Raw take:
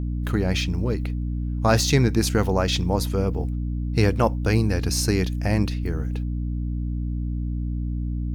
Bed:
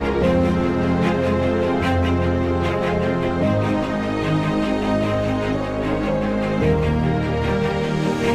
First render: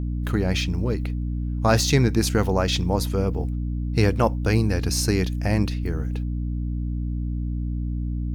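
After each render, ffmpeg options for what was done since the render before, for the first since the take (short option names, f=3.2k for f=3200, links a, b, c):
-af anull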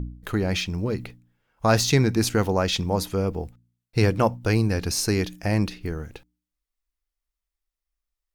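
-af "bandreject=f=60:t=h:w=4,bandreject=f=120:t=h:w=4,bandreject=f=180:t=h:w=4,bandreject=f=240:t=h:w=4,bandreject=f=300:t=h:w=4"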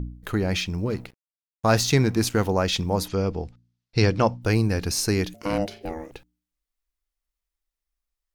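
-filter_complex "[0:a]asettb=1/sr,asplit=3[a][b][c];[a]atrim=end=0.904[d];[b]atrim=start=0.9:end=2.45,asetpts=PTS-STARTPTS,afade=t=in:d=0.004:c=qsin,afade=t=out:st=1.546:d=0.004:c=qsin,aeval=exprs='sgn(val(0))*max(abs(val(0))-0.00708,0)':c=same[e];[c]atrim=start=2.446[f];[d][e]acrossfade=d=0.004:c1=hsin:c2=qsin[g];[g][f]acrossfade=d=0.004:c1=qsin:c2=hsin,asettb=1/sr,asplit=3[h][i][j];[h]atrim=end=3.084[k];[i]atrim=start=3.08:end=4.42,asetpts=PTS-STARTPTS,afade=t=in:d=0.004:c=qsin,afade=t=out:st=1.336:d=0.004:c=qsin,lowpass=f=5.1k:t=q:w=1.8[l];[j]atrim=start=4.416[m];[k][l]acrossfade=d=0.004:c1=hsin:c2=qsin[n];[n][m]acrossfade=d=0.004:c1=qsin:c2=hsin,asettb=1/sr,asplit=3[o][p][q];[o]atrim=end=5.344[r];[p]atrim=start=5.34:end=6.12,asetpts=PTS-STARTPTS,afade=t=in:d=0.004:c=qsin,afade=t=out:st=0.776:d=0.004:c=qsin,aeval=exprs='val(0)*sin(2*PI*400*n/s)':c=same[s];[q]atrim=start=6.116[t];[r][s]acrossfade=d=0.004:c1=hsin:c2=qsin[u];[u][t]acrossfade=d=0.004:c1=qsin:c2=hsin"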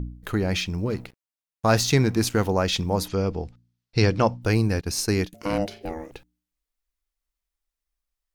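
-filter_complex "[0:a]asettb=1/sr,asplit=3[a][b][c];[a]atrim=end=4.814[d];[b]atrim=start=4.81:end=5.33,asetpts=PTS-STARTPTS,afade=t=in:d=0.004:c=qsin,afade=t=out:st=0.516:d=0.004:c=qsin,agate=range=-33dB:threshold=-25dB:ratio=3:release=100:detection=peak[e];[c]atrim=start=5.326[f];[d][e]acrossfade=d=0.004:c1=hsin:c2=qsin[g];[g][f]acrossfade=d=0.004:c1=qsin:c2=hsin"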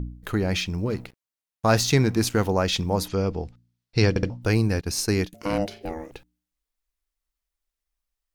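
-filter_complex "[0:a]asplit=4[a][b][c][d];[a]atrim=end=4.162[e];[b]atrim=start=4.088:end=4.162[f];[c]atrim=start=4.088:end=4.162[g];[d]atrim=start=4.298[h];[e][f]acrossfade=d=0.004:c1=hsin:c2=hsin[i];[i][g]acrossfade=d=0.004:c1=hsin:c2=hsin[j];[j][h]acrossfade=d=0.004:c1=hsin:c2=hsin"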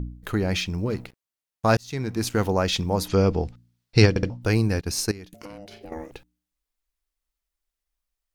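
-filter_complex "[0:a]asplit=3[a][b][c];[a]afade=t=out:st=3.08:d=0.02[d];[b]acontrast=29,afade=t=in:st=3.08:d=0.02,afade=t=out:st=4.05:d=0.02[e];[c]afade=t=in:st=4.05:d=0.02[f];[d][e][f]amix=inputs=3:normalize=0,asettb=1/sr,asplit=3[g][h][i];[g]atrim=end=5.114[j];[h]atrim=start=5.11:end=5.92,asetpts=PTS-STARTPTS,afade=t=in:d=0.004:c=qsin,afade=t=out:st=0.806:d=0.004:c=qsin,acompressor=threshold=-36dB:ratio=12:attack=3.2:release=140:knee=1:detection=peak[k];[i]atrim=start=5.916[l];[j][k]acrossfade=d=0.004:c1=hsin:c2=qsin[m];[m][l]acrossfade=d=0.004:c1=qsin:c2=hsin,asplit=2[n][o];[n]atrim=end=1.77,asetpts=PTS-STARTPTS,afade=t=out:st=1.766:d=0.004:c=hsin[p];[o]atrim=start=1.77,asetpts=PTS-STARTPTS,afade=t=in:d=0.67[q];[p][q]concat=n=2:v=0:a=1"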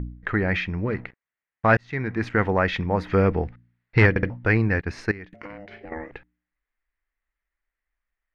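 -af "asoftclip=type=hard:threshold=-11.5dB,lowpass=f=1.9k:t=q:w=3.9"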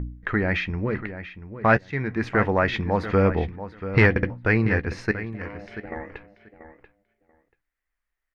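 -filter_complex "[0:a]asplit=2[a][b];[b]adelay=14,volume=-13dB[c];[a][c]amix=inputs=2:normalize=0,asplit=2[d][e];[e]adelay=686,lowpass=f=3.4k:p=1,volume=-12dB,asplit=2[f][g];[g]adelay=686,lowpass=f=3.4k:p=1,volume=0.16[h];[d][f][h]amix=inputs=3:normalize=0"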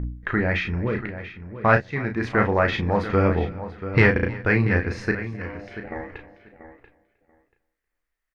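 -filter_complex "[0:a]asplit=2[a][b];[b]adelay=34,volume=-6dB[c];[a][c]amix=inputs=2:normalize=0,aecho=1:1:312|624:0.0944|0.0264"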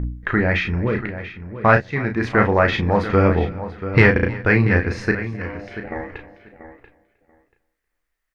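-af "volume=4dB,alimiter=limit=-1dB:level=0:latency=1"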